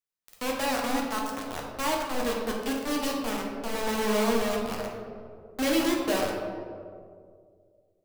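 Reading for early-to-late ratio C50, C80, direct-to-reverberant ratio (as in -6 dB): 1.5 dB, 3.5 dB, -2.0 dB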